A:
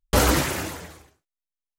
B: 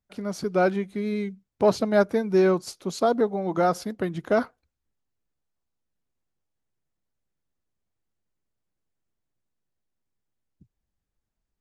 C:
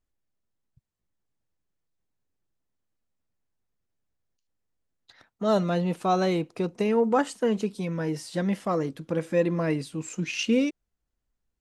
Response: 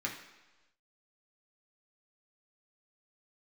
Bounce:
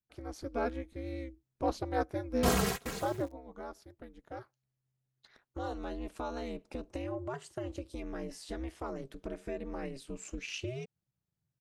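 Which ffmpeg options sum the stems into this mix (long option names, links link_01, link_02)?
-filter_complex "[0:a]aecho=1:1:3.4:0.89,aeval=exprs='val(0)*gte(abs(val(0)),0.0119)':channel_layout=same,adelay=2300,volume=-10dB[link_01];[1:a]volume=-9dB,afade=type=out:start_time=3.2:duration=0.21:silence=0.298538,asplit=2[link_02][link_03];[2:a]acompressor=threshold=-30dB:ratio=4,adelay=150,volume=-4dB[link_04];[link_03]apad=whole_len=180288[link_05];[link_01][link_05]sidechaingate=range=-25dB:threshold=-50dB:ratio=16:detection=peak[link_06];[link_06][link_02][link_04]amix=inputs=3:normalize=0,aeval=exprs='val(0)*sin(2*PI*130*n/s)':channel_layout=same"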